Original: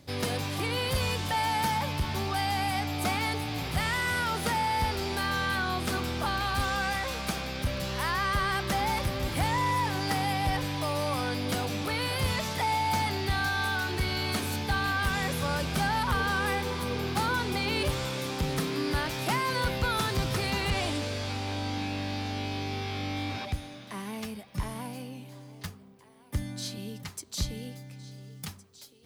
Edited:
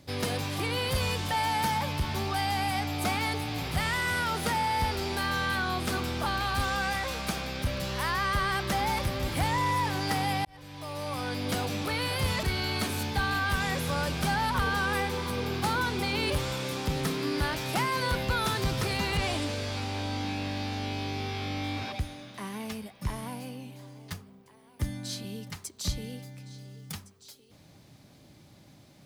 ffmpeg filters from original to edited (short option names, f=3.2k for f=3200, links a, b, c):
-filter_complex "[0:a]asplit=3[a][b][c];[a]atrim=end=10.45,asetpts=PTS-STARTPTS,afade=t=out:st=10.446:d=0.004:c=hsin[d];[b]atrim=start=10.45:end=12.432,asetpts=PTS-STARTPTS,afade=t=in:d=1.09[e];[c]atrim=start=13.958[f];[d][e]concat=n=2:v=0:a=1[g];[g][f]acrossfade=d=0.004:c1=hsin:c2=hsin"